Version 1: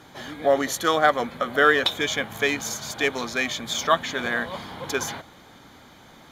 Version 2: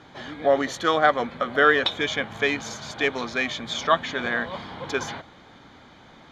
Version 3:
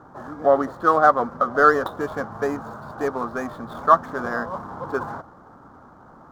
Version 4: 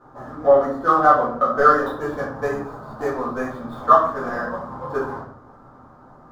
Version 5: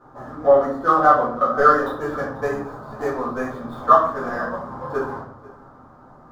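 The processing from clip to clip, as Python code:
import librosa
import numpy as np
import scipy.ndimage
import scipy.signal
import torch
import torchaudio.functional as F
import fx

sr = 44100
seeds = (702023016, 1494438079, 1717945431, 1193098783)

y1 = scipy.signal.sosfilt(scipy.signal.butter(2, 4500.0, 'lowpass', fs=sr, output='sos'), x)
y2 = scipy.signal.medfilt(y1, 15)
y2 = fx.high_shelf_res(y2, sr, hz=1700.0, db=-10.0, q=3.0)
y2 = y2 * librosa.db_to_amplitude(1.5)
y3 = fx.transient(y2, sr, attack_db=3, sustain_db=-1)
y3 = fx.room_shoebox(y3, sr, seeds[0], volume_m3=78.0, walls='mixed', distance_m=2.0)
y3 = y3 * librosa.db_to_amplitude(-9.5)
y4 = y3 + 10.0 ** (-20.5 / 20.0) * np.pad(y3, (int(491 * sr / 1000.0), 0))[:len(y3)]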